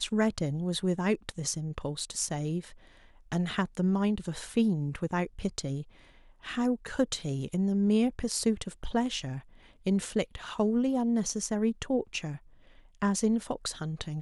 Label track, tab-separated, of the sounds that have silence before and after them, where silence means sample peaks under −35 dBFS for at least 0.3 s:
3.320000	5.820000	sound
6.450000	9.390000	sound
9.870000	12.360000	sound